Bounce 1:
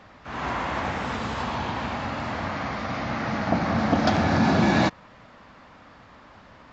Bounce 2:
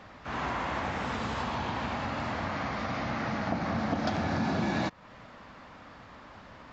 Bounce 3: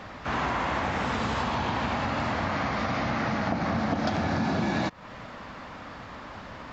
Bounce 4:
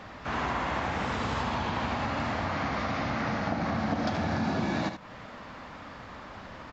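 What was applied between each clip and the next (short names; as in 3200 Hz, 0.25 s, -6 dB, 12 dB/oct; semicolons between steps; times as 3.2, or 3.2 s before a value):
compressor 2.5:1, threshold -31 dBFS, peak gain reduction 10.5 dB
compressor 2.5:1, threshold -34 dBFS, peak gain reduction 6.5 dB; gain +8 dB
echo 76 ms -8.5 dB; gain -3 dB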